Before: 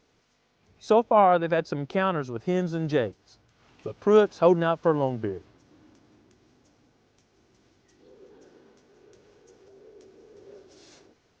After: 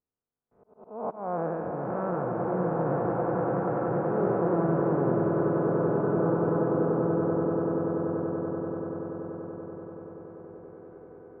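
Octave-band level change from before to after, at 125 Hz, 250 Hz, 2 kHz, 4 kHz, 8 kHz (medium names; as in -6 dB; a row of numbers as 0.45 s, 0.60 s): +3.5 dB, +3.0 dB, -6.0 dB, under -30 dB, no reading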